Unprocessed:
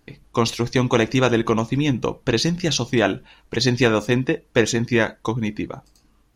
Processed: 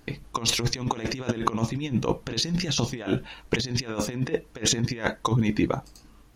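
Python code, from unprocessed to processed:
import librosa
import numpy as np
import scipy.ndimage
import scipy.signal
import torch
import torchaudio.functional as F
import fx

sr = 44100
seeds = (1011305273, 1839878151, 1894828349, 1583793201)

y = fx.over_compress(x, sr, threshold_db=-25.0, ratio=-0.5)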